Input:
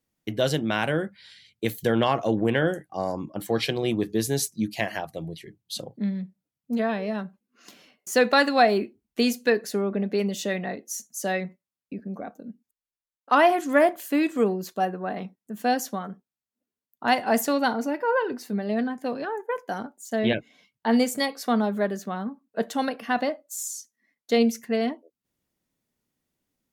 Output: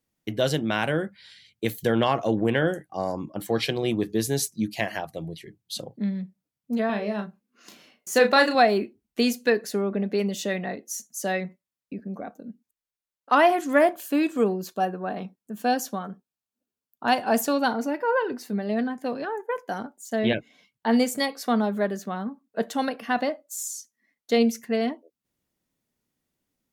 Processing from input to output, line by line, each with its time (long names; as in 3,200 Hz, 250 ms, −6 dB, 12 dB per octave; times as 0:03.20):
0:06.86–0:08.55: double-tracking delay 34 ms −6.5 dB
0:13.91–0:17.70: notch filter 2,000 Hz, Q 7.2